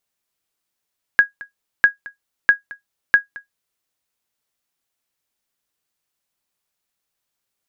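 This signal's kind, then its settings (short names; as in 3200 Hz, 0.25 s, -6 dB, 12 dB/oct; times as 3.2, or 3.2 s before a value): sonar ping 1650 Hz, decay 0.13 s, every 0.65 s, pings 4, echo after 0.22 s, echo -22.5 dB -2 dBFS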